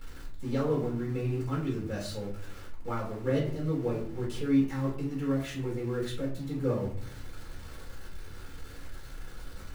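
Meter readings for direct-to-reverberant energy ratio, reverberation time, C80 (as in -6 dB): -6.0 dB, 0.50 s, 10.5 dB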